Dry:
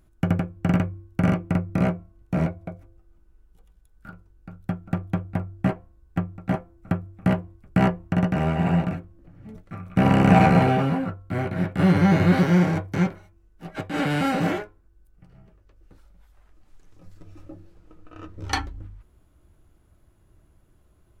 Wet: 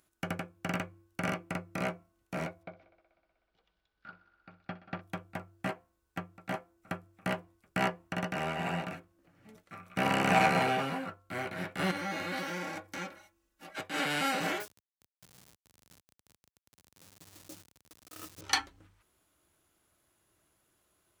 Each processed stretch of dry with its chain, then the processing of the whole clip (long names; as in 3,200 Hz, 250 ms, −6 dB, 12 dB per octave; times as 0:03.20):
0:02.63–0:05.01: Butterworth low-pass 4,800 Hz + feedback echo with a high-pass in the loop 62 ms, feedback 84%, high-pass 190 Hz, level −17 dB
0:11.91–0:13.73: comb filter 3.6 ms, depth 72% + downward compressor 1.5 to 1, threshold −37 dBFS
0:14.60–0:18.41: hold until the input has moved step −45.5 dBFS + high-pass filter 66 Hz + bass and treble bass +8 dB, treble +8 dB
whole clip: high-pass filter 560 Hz 6 dB per octave; high-shelf EQ 2,100 Hz +9 dB; level −6 dB